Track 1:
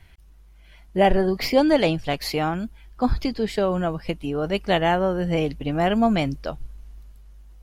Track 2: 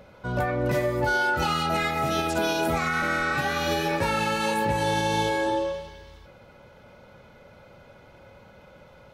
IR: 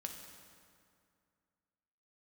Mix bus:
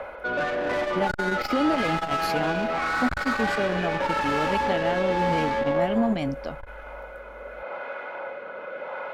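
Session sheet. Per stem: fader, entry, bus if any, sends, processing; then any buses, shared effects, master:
-4.5 dB, 0.00 s, no send, peak limiter -14 dBFS, peak gain reduction 7.5 dB
+2.0 dB, 0.00 s, send -5 dB, three-band isolator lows -23 dB, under 450 Hz, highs -22 dB, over 2.4 kHz; rotary cabinet horn 0.85 Hz; overdrive pedal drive 27 dB, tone 2.1 kHz, clips at -17 dBFS; auto duck -10 dB, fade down 0.50 s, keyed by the first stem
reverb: on, RT60 2.3 s, pre-delay 3 ms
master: peaking EQ 250 Hz +6 dB 0.6 oct; transformer saturation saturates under 360 Hz

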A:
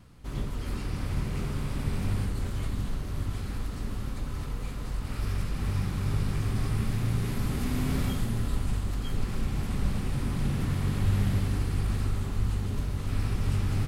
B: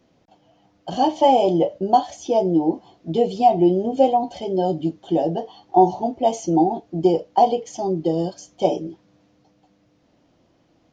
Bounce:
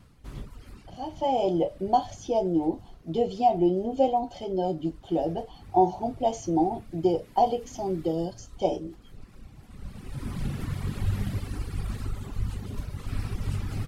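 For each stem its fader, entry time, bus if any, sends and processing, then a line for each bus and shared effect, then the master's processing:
0.0 dB, 0.00 s, no send, reverb removal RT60 1.8 s; auto duck -15 dB, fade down 1.00 s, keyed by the second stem
0.99 s -18.5 dB -> 1.46 s -6.5 dB, 0.00 s, no send, none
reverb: none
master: none

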